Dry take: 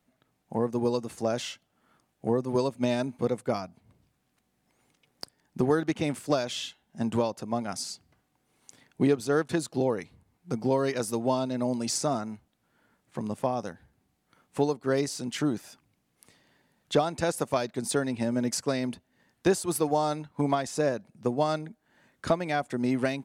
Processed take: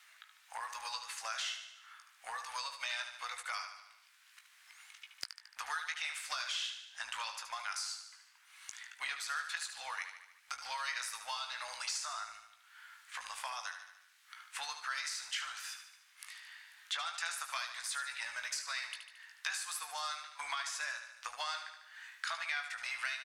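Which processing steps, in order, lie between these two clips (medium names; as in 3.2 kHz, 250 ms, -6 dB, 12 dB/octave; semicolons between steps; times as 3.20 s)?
octave divider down 2 oct, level +4 dB; inverse Chebyshev high-pass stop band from 400 Hz, stop band 60 dB; doubling 18 ms -7 dB; compression 2:1, threshold -49 dBFS, peak gain reduction 12.5 dB; on a send: feedback delay 74 ms, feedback 52%, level -9 dB; on the sum: one-sided clip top -31 dBFS; treble shelf 8 kHz -10.5 dB; three bands compressed up and down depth 40%; trim +8.5 dB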